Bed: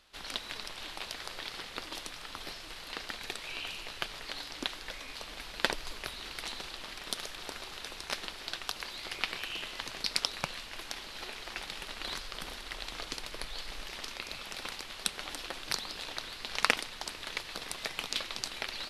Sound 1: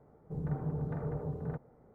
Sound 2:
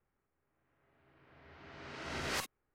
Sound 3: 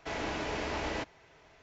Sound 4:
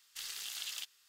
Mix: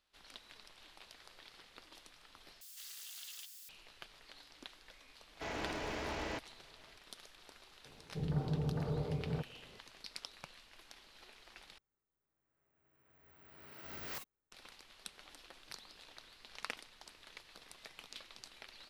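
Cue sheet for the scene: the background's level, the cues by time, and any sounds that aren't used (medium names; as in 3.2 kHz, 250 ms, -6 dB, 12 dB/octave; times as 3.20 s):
bed -16.5 dB
2.61 s: replace with 4 -10.5 dB + zero-crossing glitches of -38.5 dBFS
5.35 s: add 3 -5 dB + one-sided wavefolder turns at -30.5 dBFS
7.85 s: add 1 -0.5 dB
11.78 s: replace with 2 -10.5 dB + careless resampling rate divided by 2×, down none, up zero stuff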